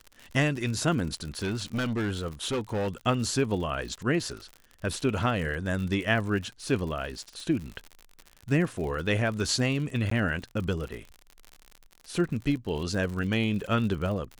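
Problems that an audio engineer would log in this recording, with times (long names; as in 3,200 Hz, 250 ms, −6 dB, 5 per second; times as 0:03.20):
surface crackle 69 per second −34 dBFS
0:01.37–0:02.88: clipping −25 dBFS
0:10.10–0:10.11: drop-out 14 ms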